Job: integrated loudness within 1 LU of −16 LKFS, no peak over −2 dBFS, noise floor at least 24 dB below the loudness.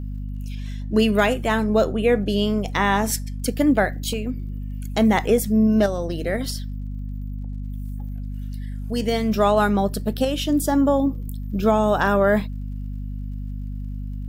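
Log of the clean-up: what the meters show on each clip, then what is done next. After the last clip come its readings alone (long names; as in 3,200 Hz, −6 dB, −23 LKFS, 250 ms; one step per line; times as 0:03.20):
crackle rate 39 per second; mains hum 50 Hz; hum harmonics up to 250 Hz; level of the hum −27 dBFS; integrated loudness −21.0 LKFS; sample peak −6.5 dBFS; target loudness −16.0 LKFS
→ click removal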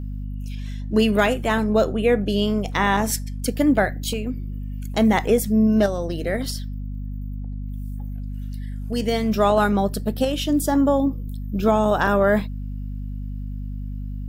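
crackle rate 0.63 per second; mains hum 50 Hz; hum harmonics up to 250 Hz; level of the hum −27 dBFS
→ mains-hum notches 50/100/150/200/250 Hz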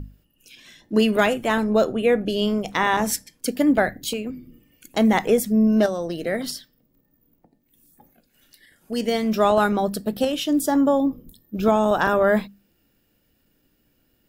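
mains hum none found; integrated loudness −21.5 LKFS; sample peak −6.5 dBFS; target loudness −16.0 LKFS
→ level +5.5 dB
brickwall limiter −2 dBFS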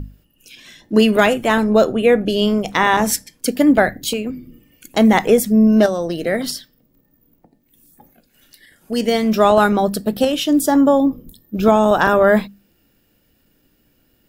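integrated loudness −16.0 LKFS; sample peak −2.0 dBFS; background noise floor −61 dBFS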